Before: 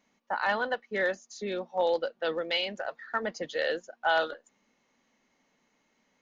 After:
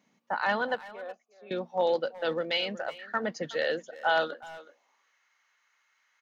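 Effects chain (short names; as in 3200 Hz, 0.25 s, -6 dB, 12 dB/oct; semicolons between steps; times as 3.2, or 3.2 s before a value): 0.87–1.51 vowel filter a; high-pass sweep 140 Hz -> 1400 Hz, 4.22–5.09; speakerphone echo 0.37 s, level -16 dB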